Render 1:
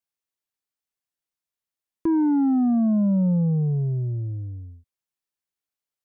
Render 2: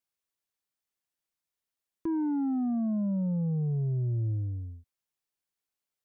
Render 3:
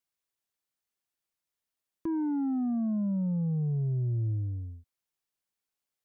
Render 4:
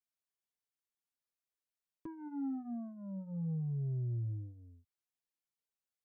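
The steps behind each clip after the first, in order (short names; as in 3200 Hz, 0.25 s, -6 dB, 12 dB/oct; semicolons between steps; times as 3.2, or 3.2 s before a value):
limiter -26.5 dBFS, peak gain reduction 9 dB
dynamic EQ 550 Hz, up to -4 dB, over -48 dBFS, Q 1.6
flange 1.1 Hz, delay 5.4 ms, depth 3.4 ms, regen -11%; gain -6 dB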